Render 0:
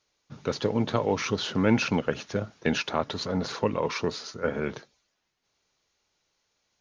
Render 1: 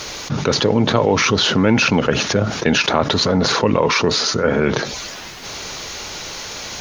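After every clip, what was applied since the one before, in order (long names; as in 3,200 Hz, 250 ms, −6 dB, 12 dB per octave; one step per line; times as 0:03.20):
envelope flattener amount 70%
level +5.5 dB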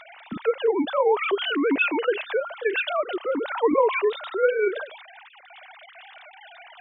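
three sine waves on the formant tracks
level −7 dB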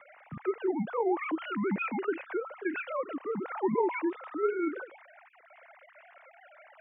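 single-sideband voice off tune −80 Hz 180–2,400 Hz
level −8 dB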